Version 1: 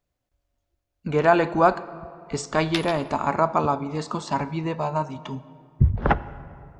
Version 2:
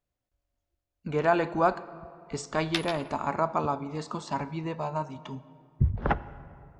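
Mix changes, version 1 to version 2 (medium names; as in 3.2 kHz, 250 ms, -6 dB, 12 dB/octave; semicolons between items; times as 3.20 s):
speech -6.0 dB; background: send -6.5 dB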